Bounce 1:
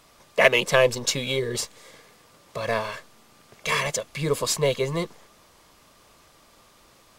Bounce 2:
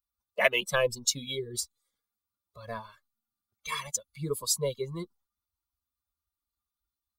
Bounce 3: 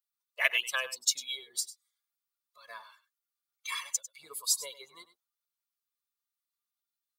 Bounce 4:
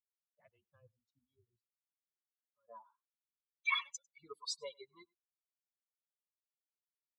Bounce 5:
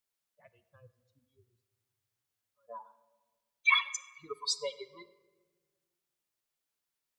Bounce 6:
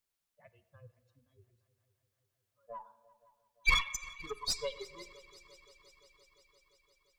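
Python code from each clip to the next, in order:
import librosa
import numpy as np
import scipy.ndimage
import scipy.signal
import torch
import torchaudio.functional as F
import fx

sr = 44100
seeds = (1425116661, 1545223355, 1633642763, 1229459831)

y1 = fx.bin_expand(x, sr, power=2.0)
y1 = fx.high_shelf(y1, sr, hz=5300.0, db=9.5)
y1 = F.gain(torch.from_numpy(y1), -5.0).numpy()
y2 = fx.octave_divider(y1, sr, octaves=2, level_db=0.0)
y2 = scipy.signal.sosfilt(scipy.signal.butter(2, 1400.0, 'highpass', fs=sr, output='sos'), y2)
y2 = y2 + 10.0 ** (-15.0 / 20.0) * np.pad(y2, (int(99 * sr / 1000.0), 0))[:len(y2)]
y3 = fx.bin_expand(y2, sr, power=2.0)
y3 = scipy.signal.sosfilt(scipy.signal.butter(4, 9000.0, 'lowpass', fs=sr, output='sos'), y3)
y3 = fx.filter_sweep_lowpass(y3, sr, from_hz=110.0, to_hz=2500.0, start_s=2.1, end_s=3.35, q=4.3)
y3 = F.gain(torch.from_numpy(y3), 3.5).numpy()
y4 = fx.room_shoebox(y3, sr, seeds[0], volume_m3=1200.0, walls='mixed', distance_m=0.33)
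y4 = F.gain(torch.from_numpy(y4), 8.5).numpy()
y5 = fx.diode_clip(y4, sr, knee_db=-27.5)
y5 = fx.low_shelf(y5, sr, hz=88.0, db=11.5)
y5 = fx.echo_heads(y5, sr, ms=173, heads='second and third', feedback_pct=63, wet_db=-22)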